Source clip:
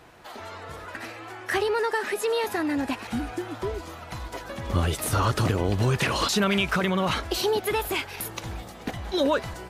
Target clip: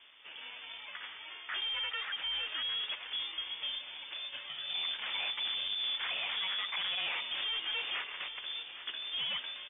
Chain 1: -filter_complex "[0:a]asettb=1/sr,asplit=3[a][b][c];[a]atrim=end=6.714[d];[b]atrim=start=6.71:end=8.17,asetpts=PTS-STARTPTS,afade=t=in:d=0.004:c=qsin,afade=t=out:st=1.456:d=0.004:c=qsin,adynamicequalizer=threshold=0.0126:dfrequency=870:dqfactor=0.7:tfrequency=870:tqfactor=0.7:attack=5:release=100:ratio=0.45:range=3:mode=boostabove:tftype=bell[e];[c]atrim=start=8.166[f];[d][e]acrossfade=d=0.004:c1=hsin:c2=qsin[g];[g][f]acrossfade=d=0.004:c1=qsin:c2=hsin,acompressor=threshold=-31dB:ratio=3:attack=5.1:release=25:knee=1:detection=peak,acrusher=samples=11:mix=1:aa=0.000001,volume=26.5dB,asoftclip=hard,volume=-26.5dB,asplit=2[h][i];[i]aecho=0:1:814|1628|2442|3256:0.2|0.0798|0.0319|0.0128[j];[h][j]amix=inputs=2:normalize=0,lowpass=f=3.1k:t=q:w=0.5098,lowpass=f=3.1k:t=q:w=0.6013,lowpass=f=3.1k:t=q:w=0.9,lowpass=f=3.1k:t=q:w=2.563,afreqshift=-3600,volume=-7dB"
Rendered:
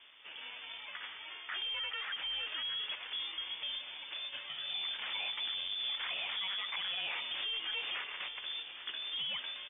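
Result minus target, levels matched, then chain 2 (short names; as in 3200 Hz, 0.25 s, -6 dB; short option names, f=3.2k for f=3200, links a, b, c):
compressor: peak gain reduction +9.5 dB
-filter_complex "[0:a]asettb=1/sr,asplit=3[a][b][c];[a]atrim=end=6.714[d];[b]atrim=start=6.71:end=8.17,asetpts=PTS-STARTPTS,afade=t=in:d=0.004:c=qsin,afade=t=out:st=1.456:d=0.004:c=qsin,adynamicequalizer=threshold=0.0126:dfrequency=870:dqfactor=0.7:tfrequency=870:tqfactor=0.7:attack=5:release=100:ratio=0.45:range=3:mode=boostabove:tftype=bell[e];[c]atrim=start=8.166[f];[d][e]acrossfade=d=0.004:c1=hsin:c2=qsin[g];[g][f]acrossfade=d=0.004:c1=qsin:c2=hsin,acrusher=samples=11:mix=1:aa=0.000001,volume=26.5dB,asoftclip=hard,volume=-26.5dB,asplit=2[h][i];[i]aecho=0:1:814|1628|2442|3256:0.2|0.0798|0.0319|0.0128[j];[h][j]amix=inputs=2:normalize=0,lowpass=f=3.1k:t=q:w=0.5098,lowpass=f=3.1k:t=q:w=0.6013,lowpass=f=3.1k:t=q:w=0.9,lowpass=f=3.1k:t=q:w=2.563,afreqshift=-3600,volume=-7dB"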